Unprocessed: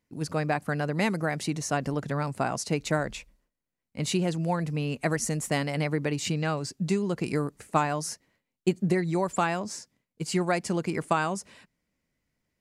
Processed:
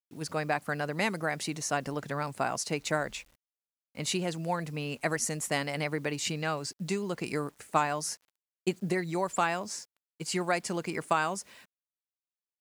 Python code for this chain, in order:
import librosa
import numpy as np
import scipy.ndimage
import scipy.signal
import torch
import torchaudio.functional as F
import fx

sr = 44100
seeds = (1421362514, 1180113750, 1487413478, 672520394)

y = fx.quant_dither(x, sr, seeds[0], bits=10, dither='none')
y = fx.low_shelf(y, sr, hz=370.0, db=-9.0)